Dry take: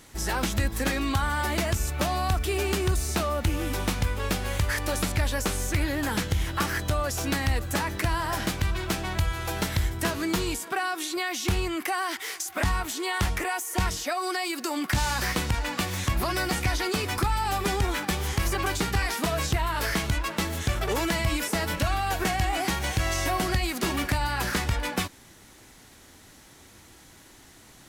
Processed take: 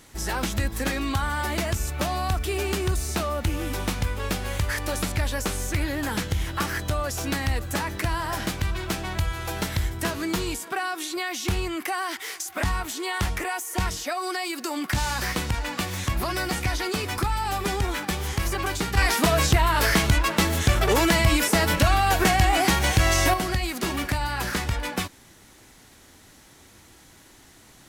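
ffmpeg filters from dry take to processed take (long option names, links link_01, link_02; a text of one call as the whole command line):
ffmpeg -i in.wav -filter_complex "[0:a]asettb=1/sr,asplit=3[link_01][link_02][link_03];[link_01]atrim=end=18.974[link_04];[link_02]atrim=start=18.97:end=23.34,asetpts=PTS-STARTPTS,afade=type=in:duration=0.004:curve=qsin,afade=type=out:start_time=4.366:duration=0.004:curve=qsin,acontrast=72[link_05];[link_03]atrim=start=23.336[link_06];[link_04][link_05]acrossfade=duration=0.004:curve1=hsin:curve2=qsin[link_07];[link_07][link_06]acrossfade=duration=0.004:curve1=qsin:curve2=hsin" out.wav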